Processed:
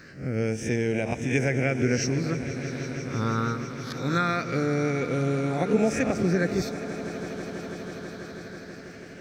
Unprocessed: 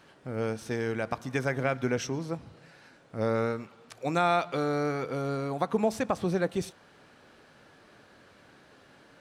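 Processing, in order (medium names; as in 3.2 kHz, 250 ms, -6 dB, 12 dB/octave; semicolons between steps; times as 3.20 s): reverse spectral sustain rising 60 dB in 0.37 s; in parallel at +2 dB: compression, threshold -37 dBFS, peak gain reduction 15.5 dB; on the sum: phase shifter stages 6, 0.23 Hz, lowest notch 590–1200 Hz; echo with a slow build-up 163 ms, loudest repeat 5, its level -16.5 dB; trim +3 dB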